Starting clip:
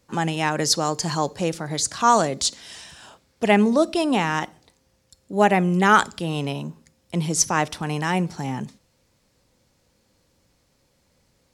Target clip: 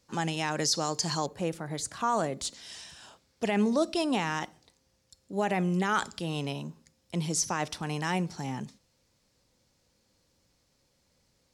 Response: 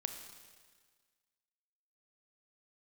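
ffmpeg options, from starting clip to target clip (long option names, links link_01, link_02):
-af "asetnsamples=nb_out_samples=441:pad=0,asendcmd='1.26 equalizer g -7;2.54 equalizer g 4.5',equalizer=frequency=5200:width=1:gain=7,alimiter=limit=-10dB:level=0:latency=1:release=21,volume=-7dB"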